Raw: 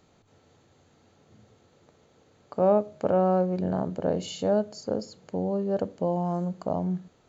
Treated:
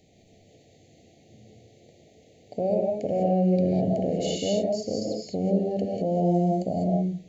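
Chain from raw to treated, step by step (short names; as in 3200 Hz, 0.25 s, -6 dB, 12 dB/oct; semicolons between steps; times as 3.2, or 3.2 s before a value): elliptic band-stop 730–2000 Hz, stop band 40 dB; limiter -22.5 dBFS, peak gain reduction 9 dB; non-linear reverb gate 0.23 s rising, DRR -0.5 dB; gain +3 dB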